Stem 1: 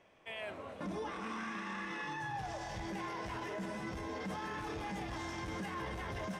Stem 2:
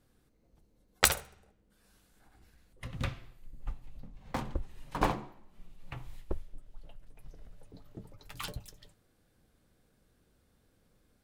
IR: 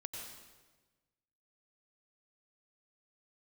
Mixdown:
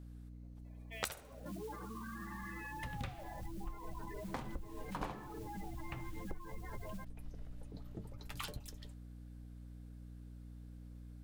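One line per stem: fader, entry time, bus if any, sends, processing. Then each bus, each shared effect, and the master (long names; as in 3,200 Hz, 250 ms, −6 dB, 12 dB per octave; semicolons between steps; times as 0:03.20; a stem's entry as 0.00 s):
−3.0 dB, 0.65 s, no send, gate on every frequency bin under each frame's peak −10 dB strong; notch filter 1,100 Hz, Q 26; noise that follows the level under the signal 16 dB
+0.5 dB, 0.00 s, no send, mains hum 60 Hz, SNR 12 dB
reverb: not used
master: downward compressor 4 to 1, threshold −40 dBFS, peak gain reduction 19 dB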